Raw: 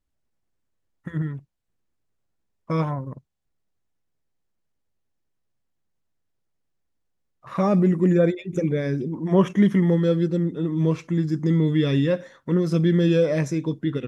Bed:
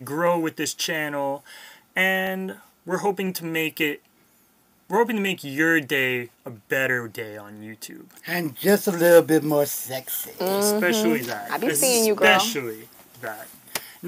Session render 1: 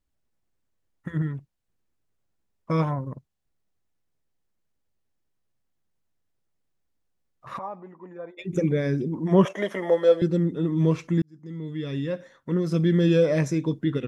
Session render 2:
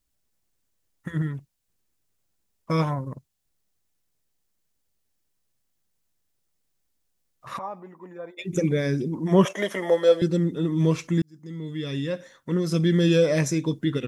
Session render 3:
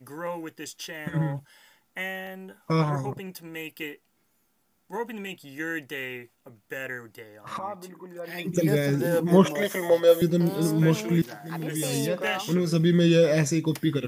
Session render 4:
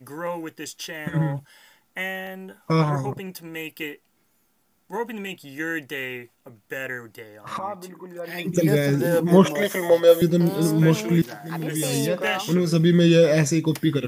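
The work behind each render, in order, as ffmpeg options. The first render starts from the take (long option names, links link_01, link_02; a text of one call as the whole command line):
ffmpeg -i in.wav -filter_complex "[0:a]asplit=3[link_01][link_02][link_03];[link_01]afade=type=out:start_time=7.57:duration=0.02[link_04];[link_02]bandpass=frequency=920:width_type=q:width=6.2,afade=type=in:start_time=7.57:duration=0.02,afade=type=out:start_time=8.37:duration=0.02[link_05];[link_03]afade=type=in:start_time=8.37:duration=0.02[link_06];[link_04][link_05][link_06]amix=inputs=3:normalize=0,asettb=1/sr,asplit=3[link_07][link_08][link_09];[link_07]atrim=end=9.454[link_10];[link_08]atrim=start=9.45:end=10.22,asetpts=PTS-STARTPTS,afade=type=in:duration=0.004:curve=qsin,afade=type=out:start_time=0.766:duration=0.004:curve=qsin,highpass=frequency=610:width_type=q:width=5[link_11];[link_09]atrim=start=10.216[link_12];[link_10][link_11]acrossfade=duration=0.004:curve1=hsin:curve2=qsin[link_13];[link_13][link_12]acrossfade=duration=0.004:curve1=qsin:curve2=hsin,asplit=2[link_14][link_15];[link_14]atrim=end=11.22,asetpts=PTS-STARTPTS,afade=type=out:start_time=11.216:duration=0.004:curve=hsin[link_16];[link_15]atrim=start=11.22,asetpts=PTS-STARTPTS,afade=type=in:duration=2.04[link_17];[link_16][link_17]concat=n=2:v=0:a=1" out.wav
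ffmpeg -i in.wav -af "highshelf=frequency=3400:gain=11.5" out.wav
ffmpeg -i in.wav -i bed.wav -filter_complex "[1:a]volume=-12dB[link_01];[0:a][link_01]amix=inputs=2:normalize=0" out.wav
ffmpeg -i in.wav -af "volume=3.5dB,alimiter=limit=-3dB:level=0:latency=1" out.wav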